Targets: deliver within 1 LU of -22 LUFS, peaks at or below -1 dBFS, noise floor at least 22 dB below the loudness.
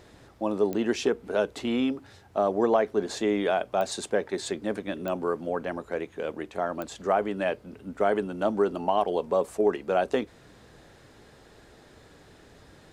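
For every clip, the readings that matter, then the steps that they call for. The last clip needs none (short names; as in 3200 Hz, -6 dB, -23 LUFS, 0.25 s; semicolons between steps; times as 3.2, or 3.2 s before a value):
clicks 4; loudness -28.0 LUFS; peak -11.0 dBFS; loudness target -22.0 LUFS
-> de-click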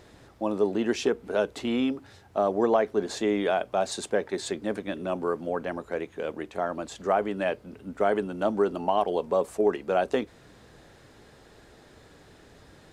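clicks 0; loudness -28.0 LUFS; peak -11.0 dBFS; loudness target -22.0 LUFS
-> gain +6 dB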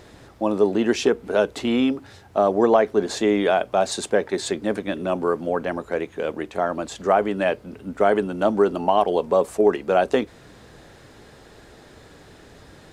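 loudness -22.0 LUFS; peak -5.0 dBFS; noise floor -49 dBFS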